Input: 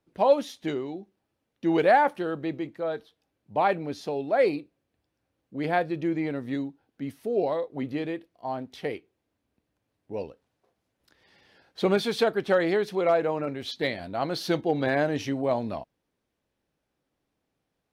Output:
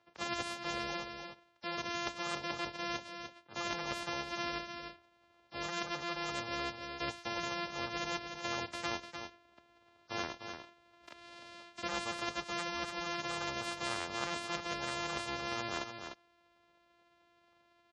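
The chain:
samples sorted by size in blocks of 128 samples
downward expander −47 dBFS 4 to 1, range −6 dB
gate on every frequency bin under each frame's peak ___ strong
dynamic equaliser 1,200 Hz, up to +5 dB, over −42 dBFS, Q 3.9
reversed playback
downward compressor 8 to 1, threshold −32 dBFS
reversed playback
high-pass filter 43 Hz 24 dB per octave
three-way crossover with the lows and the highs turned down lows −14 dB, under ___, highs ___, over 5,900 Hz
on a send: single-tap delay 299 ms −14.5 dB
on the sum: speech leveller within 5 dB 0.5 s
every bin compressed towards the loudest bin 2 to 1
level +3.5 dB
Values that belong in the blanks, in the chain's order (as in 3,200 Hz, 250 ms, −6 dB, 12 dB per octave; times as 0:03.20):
−25 dB, 430 Hz, −20 dB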